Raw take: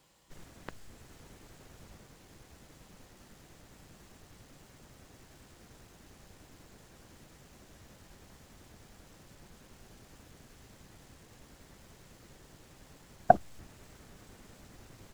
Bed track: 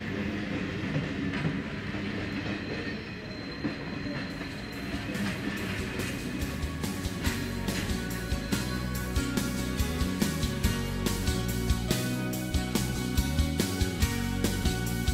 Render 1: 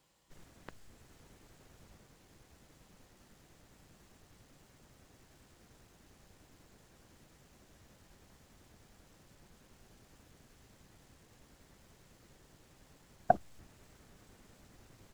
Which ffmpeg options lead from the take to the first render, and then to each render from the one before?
ffmpeg -i in.wav -af "volume=-6dB" out.wav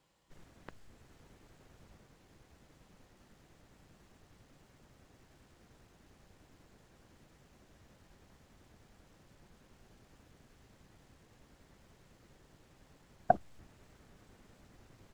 ffmpeg -i in.wav -af "highshelf=frequency=5200:gain=-7.5" out.wav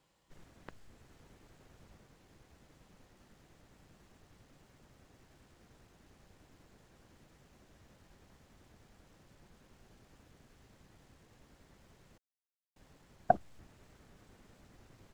ffmpeg -i in.wav -filter_complex "[0:a]asplit=3[link_01][link_02][link_03];[link_01]atrim=end=12.18,asetpts=PTS-STARTPTS,afade=type=out:start_time=12.176:duration=0.004:curve=hsin[link_04];[link_02]atrim=start=12.18:end=12.76,asetpts=PTS-STARTPTS,volume=0[link_05];[link_03]atrim=start=12.76,asetpts=PTS-STARTPTS,afade=type=in:duration=0.004:curve=hsin[link_06];[link_04][link_05][link_06]concat=n=3:v=0:a=1" out.wav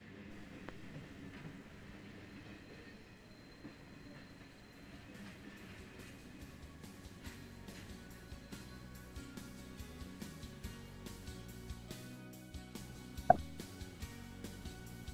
ffmpeg -i in.wav -i bed.wav -filter_complex "[1:a]volume=-21dB[link_01];[0:a][link_01]amix=inputs=2:normalize=0" out.wav

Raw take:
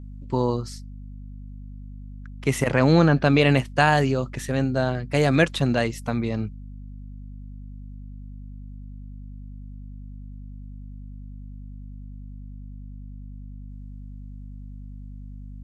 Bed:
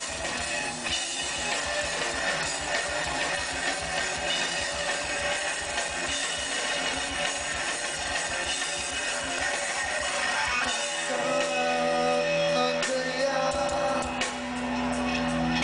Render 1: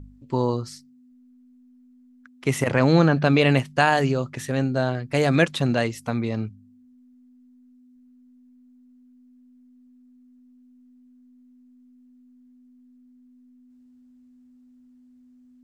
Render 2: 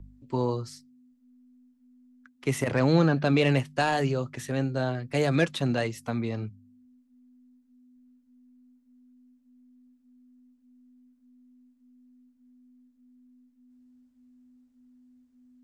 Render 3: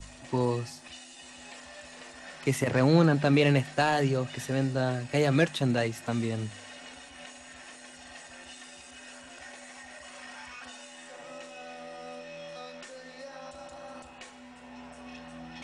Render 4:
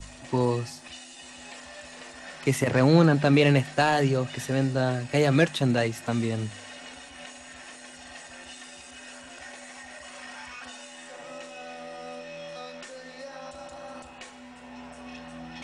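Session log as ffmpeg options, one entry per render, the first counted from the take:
ffmpeg -i in.wav -af "bandreject=frequency=50:width_type=h:width=4,bandreject=frequency=100:width_type=h:width=4,bandreject=frequency=150:width_type=h:width=4,bandreject=frequency=200:width_type=h:width=4" out.wav
ffmpeg -i in.wav -filter_complex "[0:a]acrossover=split=150|670|3000[link_01][link_02][link_03][link_04];[link_03]asoftclip=type=tanh:threshold=-20dB[link_05];[link_01][link_02][link_05][link_04]amix=inputs=4:normalize=0,flanger=delay=1.9:depth=1.3:regen=-76:speed=1.7:shape=triangular" out.wav
ffmpeg -i in.wav -i bed.wav -filter_complex "[1:a]volume=-18dB[link_01];[0:a][link_01]amix=inputs=2:normalize=0" out.wav
ffmpeg -i in.wav -af "volume=3dB" out.wav

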